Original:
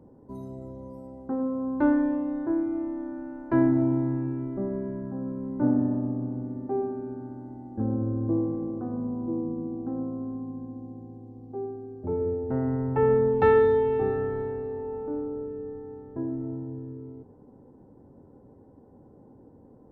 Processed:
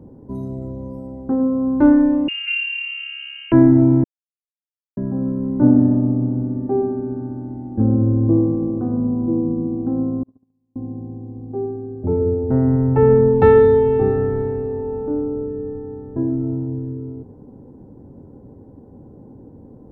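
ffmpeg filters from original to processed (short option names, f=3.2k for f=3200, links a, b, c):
-filter_complex "[0:a]asettb=1/sr,asplit=3[a][b][c];[a]atrim=end=2.284[d];[b]atrim=start=2.28:end=3.52,asetpts=PTS-STARTPTS,afade=t=in:d=0.004:c=qsin,afade=t=out:st=1.236:d=0.004:c=qsin,lowpass=f=2.6k:t=q:w=0.5098,lowpass=f=2.6k:t=q:w=0.6013,lowpass=f=2.6k:t=q:w=0.9,lowpass=f=2.6k:t=q:w=2.563,afreqshift=-3100[e];[c]atrim=start=3.516[f];[d][e]acrossfade=d=0.004:c1=hsin:c2=qsin[g];[g][f]acrossfade=d=0.004:c1=qsin:c2=hsin,asettb=1/sr,asplit=3[h][i][j];[h]atrim=end=10.234[k];[i]atrim=start=10.23:end=10.76,asetpts=PTS-STARTPTS,afade=t=in:d=0.004:c=qsin,afade=t=out:st=0.526:d=0.004:c=qsin,agate=range=-43dB:threshold=-30dB:ratio=16:release=100:detection=peak[l];[j]atrim=start=10.756[m];[k][l]acrossfade=d=0.004:c1=hsin:c2=qsin[n];[n][m]acrossfade=d=0.004:c1=qsin:c2=hsin,asplit=3[o][p][q];[o]atrim=end=4.04,asetpts=PTS-STARTPTS,afade=t=out:st=4.036:d=0.004:c=hsin[r];[p]atrim=start=4.04:end=4.97,asetpts=PTS-STARTPTS,volume=0[s];[q]atrim=start=4.97,asetpts=PTS-STARTPTS,afade=t=in:d=0.004:c=hsin[t];[r][s][t]concat=n=3:v=0:a=1,lowshelf=f=450:g=10.5,volume=3dB"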